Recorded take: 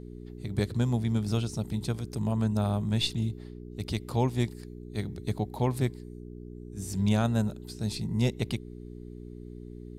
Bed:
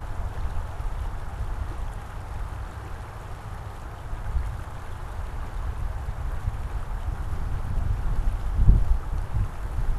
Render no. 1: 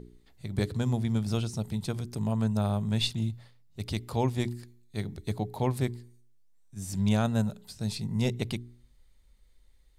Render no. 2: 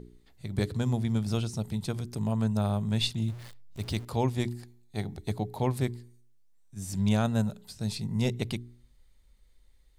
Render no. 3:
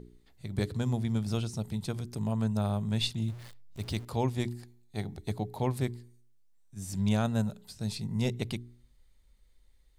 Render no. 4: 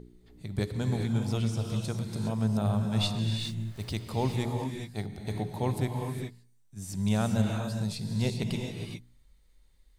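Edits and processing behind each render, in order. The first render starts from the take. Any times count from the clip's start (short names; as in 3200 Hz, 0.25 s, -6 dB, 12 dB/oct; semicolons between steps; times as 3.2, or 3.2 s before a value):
de-hum 60 Hz, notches 7
3.28–4.05 zero-crossing step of -42.5 dBFS; 4.55–5.3 bell 770 Hz +11 dB 0.43 oct
gain -2 dB
non-linear reverb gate 0.44 s rising, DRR 2.5 dB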